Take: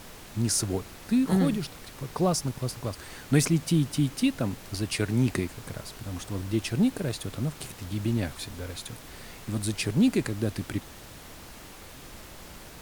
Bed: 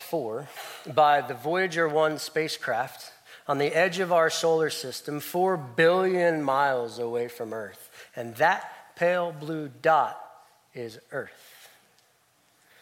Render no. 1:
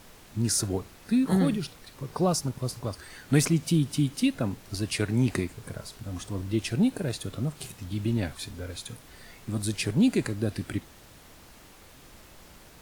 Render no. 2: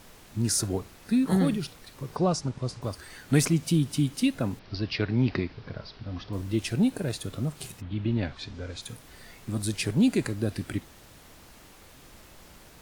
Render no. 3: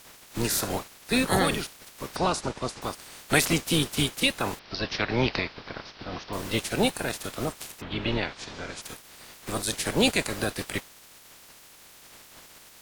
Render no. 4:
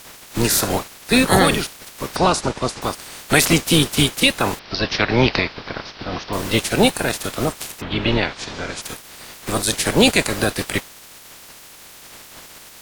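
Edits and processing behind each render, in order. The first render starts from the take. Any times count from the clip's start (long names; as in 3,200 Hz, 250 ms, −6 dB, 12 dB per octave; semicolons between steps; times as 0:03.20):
noise reduction from a noise print 6 dB
0:02.16–0:02.82: Bessel low-pass filter 5,800 Hz, order 8; 0:04.59–0:06.33: Butterworth low-pass 5,300 Hz 72 dB per octave; 0:07.80–0:08.81: low-pass filter 3,000 Hz → 7,500 Hz 24 dB per octave
ceiling on every frequency bin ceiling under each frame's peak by 23 dB
level +9 dB; brickwall limiter −1 dBFS, peak gain reduction 3 dB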